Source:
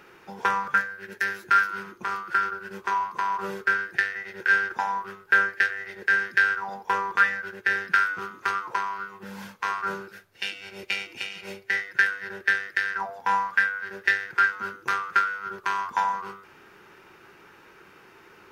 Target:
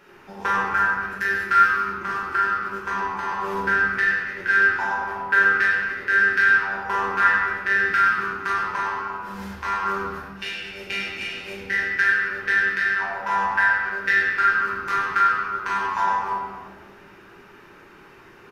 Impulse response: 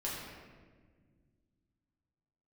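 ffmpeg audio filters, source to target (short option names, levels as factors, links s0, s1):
-filter_complex "[0:a]asplit=5[s0][s1][s2][s3][s4];[s1]adelay=94,afreqshift=-120,volume=0.282[s5];[s2]adelay=188,afreqshift=-240,volume=0.0933[s6];[s3]adelay=282,afreqshift=-360,volume=0.0305[s7];[s4]adelay=376,afreqshift=-480,volume=0.0101[s8];[s0][s5][s6][s7][s8]amix=inputs=5:normalize=0[s9];[1:a]atrim=start_sample=2205[s10];[s9][s10]afir=irnorm=-1:irlink=0,aresample=32000,aresample=44100"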